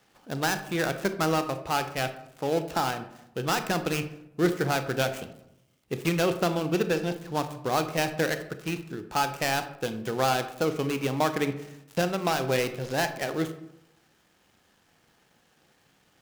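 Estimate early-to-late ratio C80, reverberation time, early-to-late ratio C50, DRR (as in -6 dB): 14.0 dB, 0.80 s, 11.5 dB, 9.0 dB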